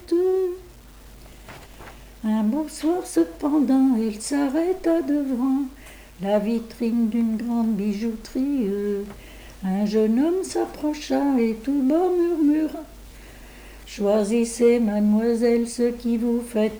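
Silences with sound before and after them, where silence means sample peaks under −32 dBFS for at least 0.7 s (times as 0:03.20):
0:00.55–0:01.49
0:12.82–0:13.91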